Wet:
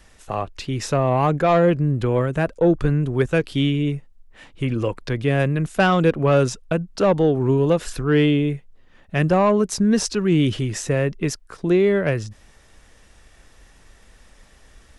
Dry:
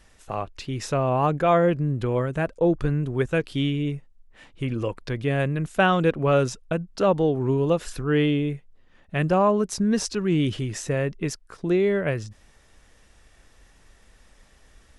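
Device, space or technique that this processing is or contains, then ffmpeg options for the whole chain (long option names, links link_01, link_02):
one-band saturation: -filter_complex "[0:a]acrossover=split=360|4000[link_01][link_02][link_03];[link_02]asoftclip=type=tanh:threshold=-16dB[link_04];[link_01][link_04][link_03]amix=inputs=3:normalize=0,volume=4.5dB"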